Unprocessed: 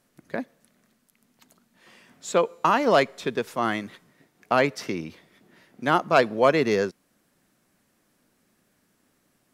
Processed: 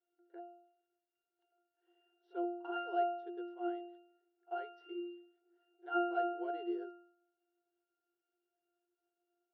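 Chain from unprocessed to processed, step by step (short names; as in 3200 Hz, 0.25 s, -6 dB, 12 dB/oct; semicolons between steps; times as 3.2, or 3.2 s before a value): octave resonator F, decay 0.68 s; FFT band-pass 320–6000 Hz; pre-echo 43 ms -22 dB; gain +2.5 dB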